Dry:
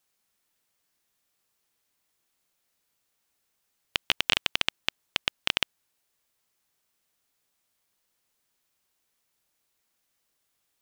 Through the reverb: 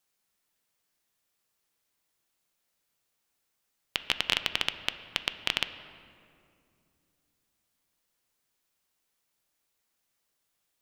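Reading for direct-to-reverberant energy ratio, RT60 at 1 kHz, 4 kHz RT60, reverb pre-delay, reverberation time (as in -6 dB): 10.0 dB, 2.2 s, 1.4 s, 6 ms, 2.5 s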